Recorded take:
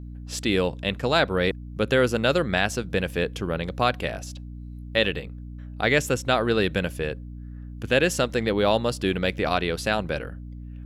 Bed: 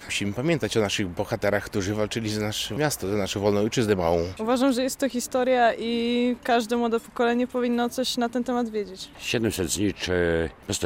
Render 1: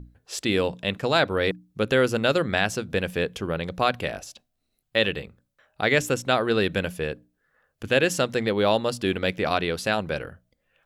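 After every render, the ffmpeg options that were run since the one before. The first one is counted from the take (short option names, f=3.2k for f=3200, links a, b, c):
-af "bandreject=f=60:t=h:w=6,bandreject=f=120:t=h:w=6,bandreject=f=180:t=h:w=6,bandreject=f=240:t=h:w=6,bandreject=f=300:t=h:w=6"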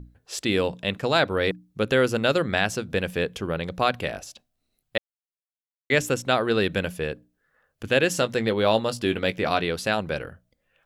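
-filter_complex "[0:a]asettb=1/sr,asplit=3[a][b][c];[a]atrim=end=8.154[d];[b]atrim=start=8.15:end=9.68,asetpts=PTS-STARTPTS,afade=t=in:d=0.004:c=qsin,afade=t=out:st=1.526:d=0.004:c=qsin,asplit=2[e][f];[f]adelay=18,volume=-12dB[g];[e][g]amix=inputs=2:normalize=0,atrim=end_sample=67473[h];[c]atrim=start=9.676[i];[d][h]acrossfade=d=0.004:c1=hsin:c2=qsin[j];[j][i]acrossfade=d=0.004:c1=qsin:c2=hsin,asplit=3[k][l][m];[k]atrim=end=4.98,asetpts=PTS-STARTPTS,afade=t=out:st=4.976:d=0.004:c=hsin[n];[l]atrim=start=4.98:end=5.9,asetpts=PTS-STARTPTS,volume=0[o];[m]atrim=start=5.9,asetpts=PTS-STARTPTS,afade=t=in:d=0.004:c=hsin[p];[n][o][p]concat=n=3:v=0:a=1"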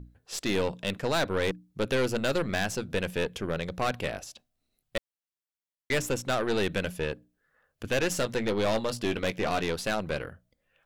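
-af "aeval=exprs='(tanh(12.6*val(0)+0.55)-tanh(0.55))/12.6':c=same"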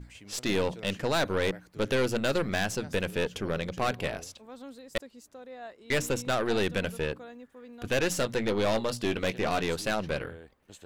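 -filter_complex "[1:a]volume=-23.5dB[a];[0:a][a]amix=inputs=2:normalize=0"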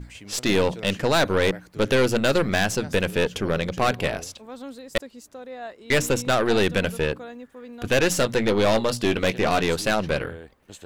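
-af "volume=7dB"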